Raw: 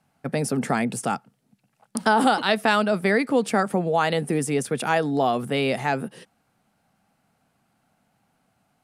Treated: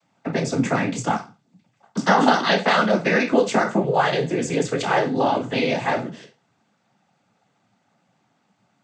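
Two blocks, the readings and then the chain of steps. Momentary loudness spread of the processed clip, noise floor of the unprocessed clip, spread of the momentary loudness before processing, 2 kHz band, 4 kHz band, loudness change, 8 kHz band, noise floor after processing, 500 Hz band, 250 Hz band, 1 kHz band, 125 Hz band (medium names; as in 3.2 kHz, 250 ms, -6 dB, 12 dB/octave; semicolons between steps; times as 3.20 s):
8 LU, -70 dBFS, 8 LU, +2.5 dB, +2.5 dB, +2.0 dB, -0.5 dB, -68 dBFS, +2.5 dB, +2.0 dB, +2.0 dB, +2.0 dB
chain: spectral sustain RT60 0.30 s; noise-vocoded speech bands 16; hum notches 50/100/150 Hz; trim +2 dB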